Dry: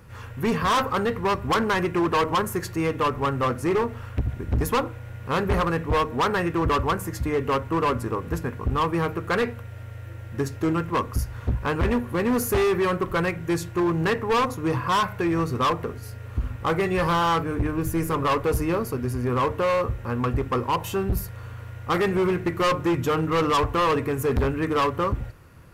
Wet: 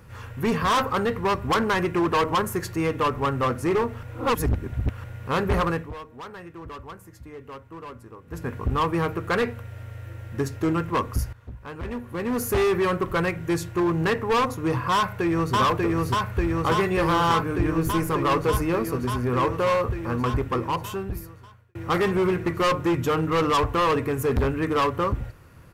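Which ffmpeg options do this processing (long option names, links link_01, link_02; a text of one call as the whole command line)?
ffmpeg -i in.wav -filter_complex "[0:a]asplit=2[link_01][link_02];[link_02]afade=type=in:start_time=14.94:duration=0.01,afade=type=out:start_time=15.55:duration=0.01,aecho=0:1:590|1180|1770|2360|2950|3540|4130|4720|5310|5900|6490|7080:0.891251|0.757563|0.643929|0.547339|0.465239|0.395453|0.336135|0.285715|0.242857|0.206429|0.175464|0.149145[link_03];[link_01][link_03]amix=inputs=2:normalize=0,asplit=7[link_04][link_05][link_06][link_07][link_08][link_09][link_10];[link_04]atrim=end=4.032[link_11];[link_05]atrim=start=4.028:end=5.042,asetpts=PTS-STARTPTS,areverse[link_12];[link_06]atrim=start=5.038:end=5.94,asetpts=PTS-STARTPTS,afade=type=out:start_time=0.662:duration=0.24:silence=0.149624[link_13];[link_07]atrim=start=5.94:end=8.27,asetpts=PTS-STARTPTS,volume=-16.5dB[link_14];[link_08]atrim=start=8.27:end=11.33,asetpts=PTS-STARTPTS,afade=type=in:duration=0.24:silence=0.149624,afade=type=out:start_time=3.056:duration=0.004:curve=hsin:silence=0.16788[link_15];[link_09]atrim=start=11.33:end=21.75,asetpts=PTS-STARTPTS,afade=type=in:duration=1.28:curve=qua:silence=0.16788,afade=type=out:start_time=9.03:duration=1.39[link_16];[link_10]atrim=start=21.75,asetpts=PTS-STARTPTS,afade=type=in:duration=0.004:curve=hsin[link_17];[link_11][link_12]acrossfade=duration=0.004:curve1=hsin:curve2=hsin[link_18];[link_13][link_14][link_15][link_16][link_17]concat=n=5:v=0:a=1[link_19];[link_18][link_19]acrossfade=duration=0.004:curve1=hsin:curve2=hsin" out.wav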